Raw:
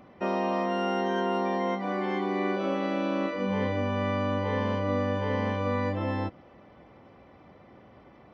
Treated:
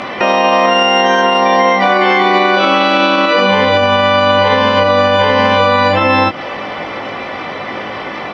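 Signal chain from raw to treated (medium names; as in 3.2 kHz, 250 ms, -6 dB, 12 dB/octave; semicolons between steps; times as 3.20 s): low-pass 3.8 kHz 12 dB/octave; tilt EQ +4.5 dB/octave; compression 6:1, threshold -39 dBFS, peak gain reduction 11.5 dB; doubling 19 ms -5 dB; loudness maximiser +33.5 dB; trim -1 dB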